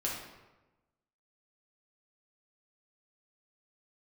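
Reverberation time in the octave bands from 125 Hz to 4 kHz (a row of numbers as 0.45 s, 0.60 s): 1.3 s, 1.2 s, 1.1 s, 1.1 s, 0.90 s, 0.75 s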